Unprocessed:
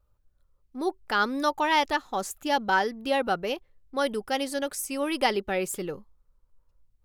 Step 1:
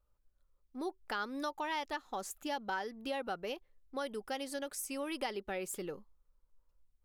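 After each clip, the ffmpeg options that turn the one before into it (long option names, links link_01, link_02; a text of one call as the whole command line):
ffmpeg -i in.wav -af "acompressor=threshold=-30dB:ratio=3,equalizer=frequency=97:width_type=o:width=1.1:gain=-8.5,volume=-6dB" out.wav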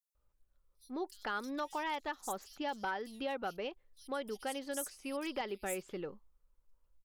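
ffmpeg -i in.wav -filter_complex "[0:a]aeval=exprs='0.0398*(abs(mod(val(0)/0.0398+3,4)-2)-1)':channel_layout=same,acrossover=split=4800[link_01][link_02];[link_01]adelay=150[link_03];[link_03][link_02]amix=inputs=2:normalize=0" out.wav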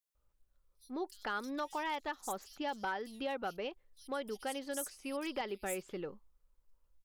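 ffmpeg -i in.wav -af "volume=29dB,asoftclip=hard,volume=-29dB" out.wav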